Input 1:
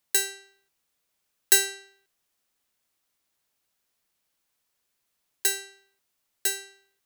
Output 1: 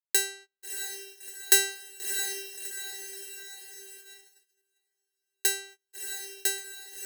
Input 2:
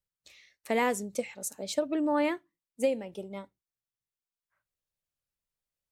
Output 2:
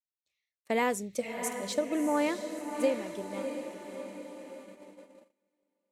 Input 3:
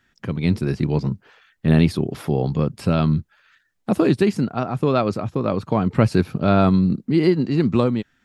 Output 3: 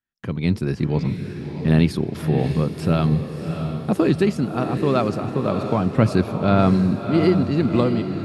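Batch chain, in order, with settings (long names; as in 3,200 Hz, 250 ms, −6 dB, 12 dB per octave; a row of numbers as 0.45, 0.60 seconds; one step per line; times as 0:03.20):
feedback delay with all-pass diffusion 651 ms, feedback 55%, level −7.5 dB
noise gate −47 dBFS, range −27 dB
level −1 dB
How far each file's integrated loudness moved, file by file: −4.0, −1.5, −0.5 LU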